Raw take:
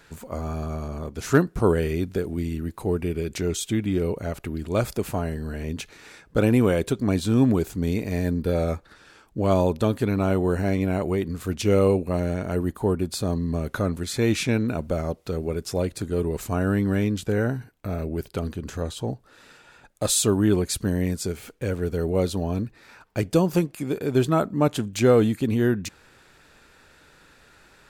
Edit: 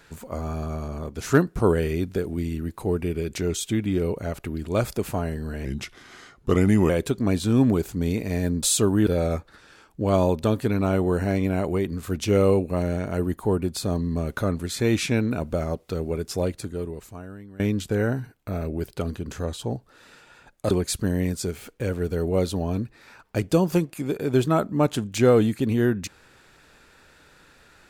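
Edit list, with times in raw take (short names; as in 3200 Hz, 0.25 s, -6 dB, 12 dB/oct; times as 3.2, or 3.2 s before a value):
5.65–6.71 speed 85%
15.82–16.97 fade out quadratic, to -22 dB
20.08–20.52 move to 8.44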